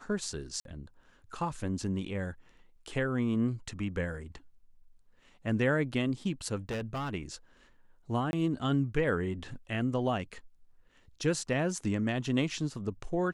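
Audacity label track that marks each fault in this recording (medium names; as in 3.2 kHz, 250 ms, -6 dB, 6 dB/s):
0.600000	0.650000	dropout 52 ms
6.690000	7.130000	clipped -31.5 dBFS
8.310000	8.330000	dropout 21 ms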